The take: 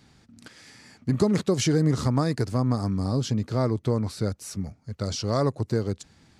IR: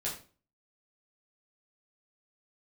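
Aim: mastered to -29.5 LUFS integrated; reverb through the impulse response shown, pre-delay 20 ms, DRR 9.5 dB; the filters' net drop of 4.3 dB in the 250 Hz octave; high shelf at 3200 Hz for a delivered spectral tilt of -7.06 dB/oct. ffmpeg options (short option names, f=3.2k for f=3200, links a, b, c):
-filter_complex "[0:a]equalizer=f=250:t=o:g=-6,highshelf=f=3.2k:g=-5.5,asplit=2[a][b];[1:a]atrim=start_sample=2205,adelay=20[c];[b][c]afir=irnorm=-1:irlink=0,volume=-12.5dB[d];[a][d]amix=inputs=2:normalize=0,volume=-1.5dB"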